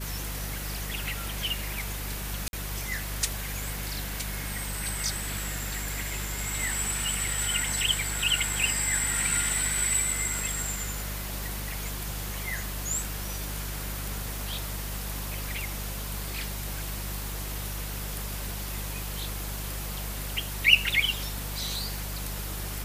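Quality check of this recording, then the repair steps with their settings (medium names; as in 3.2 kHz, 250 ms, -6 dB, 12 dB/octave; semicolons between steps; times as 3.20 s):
hum 50 Hz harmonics 4 -36 dBFS
2.48–2.53 s: dropout 51 ms
10.39 s: pop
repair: de-click; de-hum 50 Hz, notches 4; interpolate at 2.48 s, 51 ms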